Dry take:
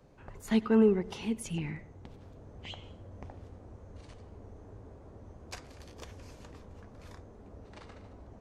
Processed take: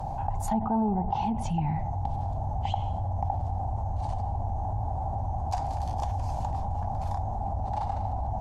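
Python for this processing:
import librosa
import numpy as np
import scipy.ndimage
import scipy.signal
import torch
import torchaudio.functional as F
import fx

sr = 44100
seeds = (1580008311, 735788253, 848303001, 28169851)

y = fx.env_lowpass_down(x, sr, base_hz=1100.0, full_db=-25.5)
y = fx.curve_eq(y, sr, hz=(110.0, 470.0, 800.0, 1200.0, 2200.0, 3200.0, 11000.0), db=(0, -23, 13, -15, -21, -17, -12))
y = fx.env_flatten(y, sr, amount_pct=70)
y = y * 10.0 ** (7.5 / 20.0)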